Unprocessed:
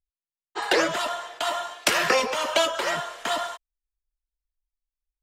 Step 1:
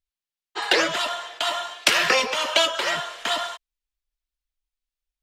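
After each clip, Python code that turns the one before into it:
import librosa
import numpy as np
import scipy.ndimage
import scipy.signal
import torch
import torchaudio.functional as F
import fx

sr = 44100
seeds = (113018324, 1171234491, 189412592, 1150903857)

y = fx.peak_eq(x, sr, hz=3300.0, db=7.5, octaves=1.9)
y = F.gain(torch.from_numpy(y), -1.5).numpy()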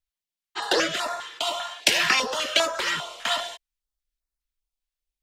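y = fx.filter_held_notch(x, sr, hz=5.0, low_hz=370.0, high_hz=3100.0)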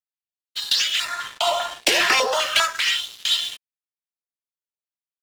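y = fx.filter_lfo_highpass(x, sr, shape='sine', hz=0.39, low_hz=360.0, high_hz=3700.0, q=1.8)
y = fx.leveller(y, sr, passes=3)
y = F.gain(torch.from_numpy(y), -7.0).numpy()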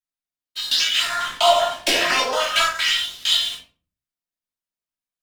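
y = fx.rider(x, sr, range_db=10, speed_s=0.5)
y = fx.room_shoebox(y, sr, seeds[0], volume_m3=250.0, walls='furnished', distance_m=2.8)
y = F.gain(torch.from_numpy(y), -3.5).numpy()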